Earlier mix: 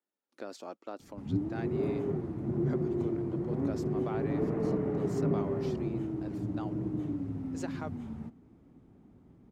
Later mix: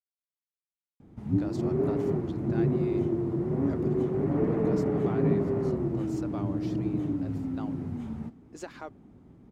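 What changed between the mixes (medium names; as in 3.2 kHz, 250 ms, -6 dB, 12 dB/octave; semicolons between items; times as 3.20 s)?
speech: entry +1.00 s; background +4.5 dB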